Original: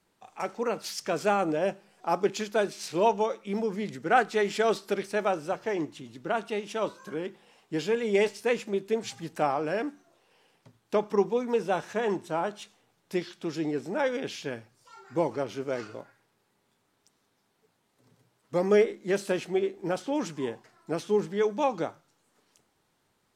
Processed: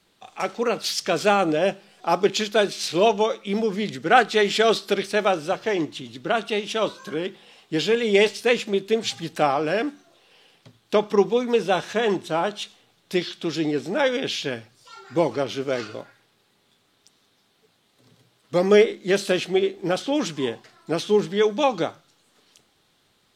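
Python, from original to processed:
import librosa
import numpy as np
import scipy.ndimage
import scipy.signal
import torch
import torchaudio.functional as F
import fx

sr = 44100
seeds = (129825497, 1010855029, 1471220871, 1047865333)

y = fx.peak_eq(x, sr, hz=3600.0, db=9.0, octaves=0.93)
y = fx.notch(y, sr, hz=920.0, q=12.0)
y = y * librosa.db_to_amplitude(6.0)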